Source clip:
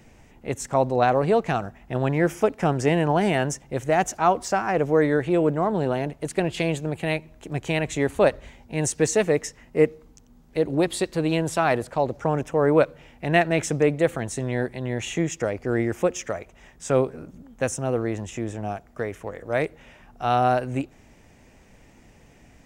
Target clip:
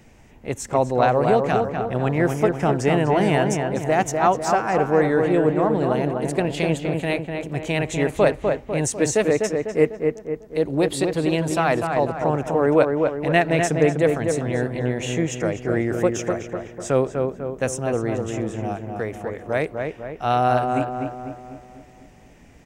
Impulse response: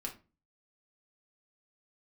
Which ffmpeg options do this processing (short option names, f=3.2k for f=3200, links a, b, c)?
-filter_complex "[0:a]asplit=2[a][b];[b]adelay=249,lowpass=f=2k:p=1,volume=-4dB,asplit=2[c][d];[d]adelay=249,lowpass=f=2k:p=1,volume=0.53,asplit=2[e][f];[f]adelay=249,lowpass=f=2k:p=1,volume=0.53,asplit=2[g][h];[h]adelay=249,lowpass=f=2k:p=1,volume=0.53,asplit=2[i][j];[j]adelay=249,lowpass=f=2k:p=1,volume=0.53,asplit=2[k][l];[l]adelay=249,lowpass=f=2k:p=1,volume=0.53,asplit=2[m][n];[n]adelay=249,lowpass=f=2k:p=1,volume=0.53[o];[a][c][e][g][i][k][m][o]amix=inputs=8:normalize=0,volume=1dB"